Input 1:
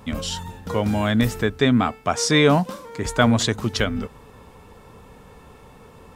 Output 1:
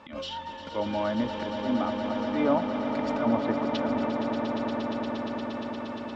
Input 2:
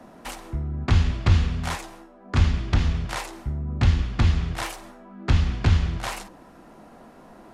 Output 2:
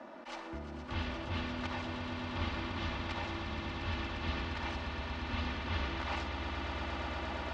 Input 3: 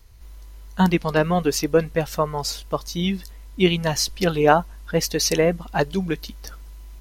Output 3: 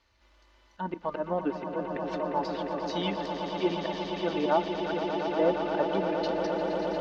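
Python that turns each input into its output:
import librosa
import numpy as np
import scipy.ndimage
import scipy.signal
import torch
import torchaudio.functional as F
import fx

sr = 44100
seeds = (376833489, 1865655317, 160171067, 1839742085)

p1 = fx.highpass(x, sr, hz=760.0, slope=6)
p2 = fx.env_lowpass_down(p1, sr, base_hz=1100.0, full_db=-22.0)
p3 = fx.dynamic_eq(p2, sr, hz=1800.0, q=0.88, threshold_db=-41.0, ratio=4.0, max_db=-5)
p4 = p3 + 0.58 * np.pad(p3, (int(3.4 * sr / 1000.0), 0))[:len(p3)]
p5 = fx.auto_swell(p4, sr, attack_ms=107.0)
p6 = fx.rider(p5, sr, range_db=10, speed_s=2.0)
p7 = fx.air_absorb(p6, sr, metres=200.0)
p8 = p7 + fx.echo_swell(p7, sr, ms=117, loudest=8, wet_db=-9.5, dry=0)
y = p8 * 10.0 ** (-1.0 / 20.0)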